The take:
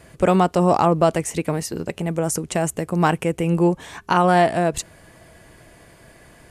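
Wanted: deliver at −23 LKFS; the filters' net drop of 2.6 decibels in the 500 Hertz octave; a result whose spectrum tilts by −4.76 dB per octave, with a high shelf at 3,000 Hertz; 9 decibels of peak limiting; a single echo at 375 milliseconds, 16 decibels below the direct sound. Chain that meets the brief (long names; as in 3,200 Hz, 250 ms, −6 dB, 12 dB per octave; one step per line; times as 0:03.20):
parametric band 500 Hz −4 dB
high-shelf EQ 3,000 Hz +7 dB
brickwall limiter −12.5 dBFS
single-tap delay 375 ms −16 dB
level +0.5 dB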